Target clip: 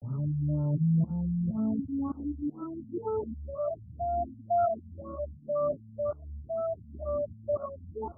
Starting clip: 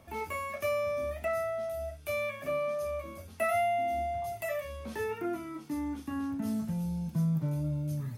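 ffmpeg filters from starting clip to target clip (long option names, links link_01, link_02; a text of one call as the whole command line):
ffmpeg -i in.wav -af "areverse,afftfilt=real='re*lt(b*sr/1024,250*pow(1500/250,0.5+0.5*sin(2*PI*2*pts/sr)))':imag='im*lt(b*sr/1024,250*pow(1500/250,0.5+0.5*sin(2*PI*2*pts/sr)))':win_size=1024:overlap=0.75,volume=3.5dB" out.wav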